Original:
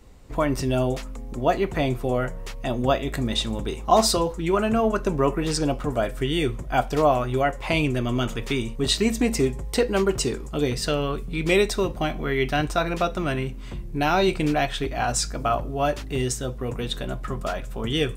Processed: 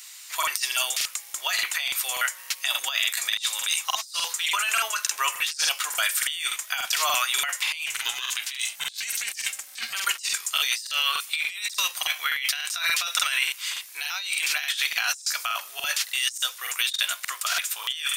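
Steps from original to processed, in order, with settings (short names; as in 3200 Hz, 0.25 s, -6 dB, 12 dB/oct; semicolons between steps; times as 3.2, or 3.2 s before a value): octaver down 2 oct, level +3 dB; Bessel high-pass 2200 Hz, order 4; high shelf 3400 Hz +11 dB; notch 7800 Hz, Q 24; negative-ratio compressor -37 dBFS, ratio -1; 7.86–9.95 ring modulator 260 Hz; crackling interface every 0.29 s, samples 2048, repeat, from 0.38; gain +8.5 dB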